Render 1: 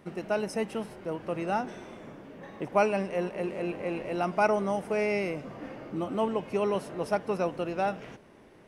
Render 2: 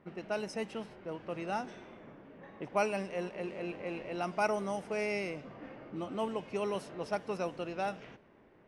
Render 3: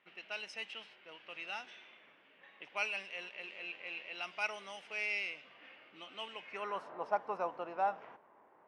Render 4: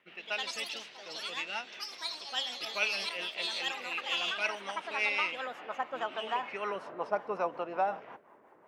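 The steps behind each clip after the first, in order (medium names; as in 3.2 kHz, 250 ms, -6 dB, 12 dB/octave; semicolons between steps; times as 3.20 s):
level-controlled noise filter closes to 1.8 kHz, open at -22.5 dBFS; treble shelf 2.9 kHz +8.5 dB; trim -7 dB
band-pass sweep 2.9 kHz -> 950 Hz, 6.29–6.91 s; trim +7 dB
rotary cabinet horn 5.5 Hz; ever faster or slower copies 139 ms, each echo +4 st, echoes 3; trim +8 dB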